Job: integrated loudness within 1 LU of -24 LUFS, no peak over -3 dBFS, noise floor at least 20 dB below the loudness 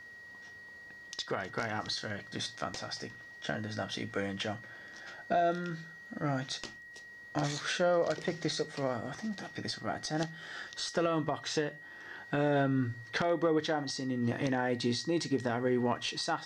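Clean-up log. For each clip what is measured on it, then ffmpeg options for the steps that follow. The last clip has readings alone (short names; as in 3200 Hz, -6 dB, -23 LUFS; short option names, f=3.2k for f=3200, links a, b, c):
steady tone 1900 Hz; tone level -48 dBFS; loudness -34.0 LUFS; peak -18.5 dBFS; loudness target -24.0 LUFS
-> -af "bandreject=f=1.9k:w=30"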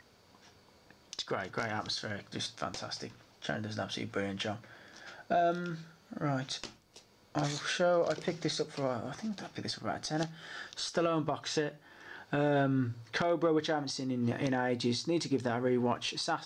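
steady tone none; loudness -34.0 LUFS; peak -19.0 dBFS; loudness target -24.0 LUFS
-> -af "volume=10dB"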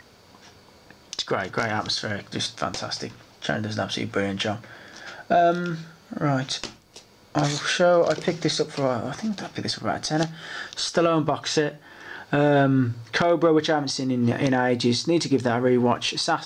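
loudness -24.0 LUFS; peak -9.0 dBFS; noise floor -53 dBFS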